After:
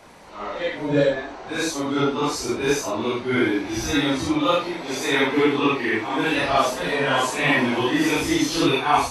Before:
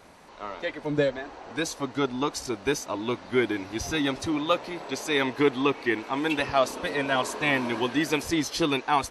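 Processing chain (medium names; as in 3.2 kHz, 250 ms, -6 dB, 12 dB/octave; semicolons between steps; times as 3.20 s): phase randomisation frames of 200 ms; trim +5.5 dB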